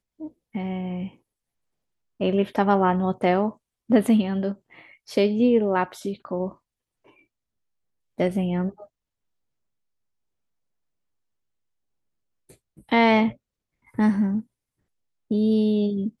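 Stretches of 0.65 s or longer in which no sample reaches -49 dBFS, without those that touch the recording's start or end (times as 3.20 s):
1.15–2.20 s
7.19–8.18 s
8.86–12.49 s
14.44–15.31 s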